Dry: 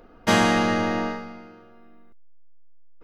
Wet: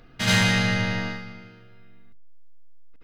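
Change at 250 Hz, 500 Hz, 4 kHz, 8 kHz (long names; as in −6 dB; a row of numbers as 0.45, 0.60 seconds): −3.0, −8.0, +4.5, +2.5 decibels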